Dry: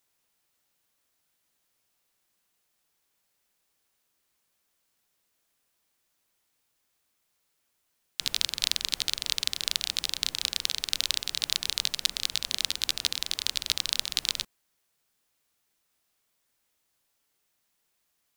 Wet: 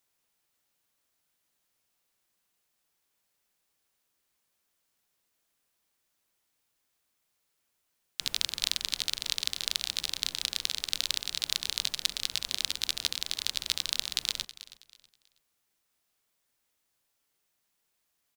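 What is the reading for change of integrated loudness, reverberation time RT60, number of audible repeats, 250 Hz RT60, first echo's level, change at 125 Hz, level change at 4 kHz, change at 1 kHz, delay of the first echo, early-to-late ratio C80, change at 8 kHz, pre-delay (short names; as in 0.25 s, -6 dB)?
-2.5 dB, none, 2, none, -16.5 dB, -2.5 dB, -2.5 dB, -2.5 dB, 0.322 s, none, -2.5 dB, none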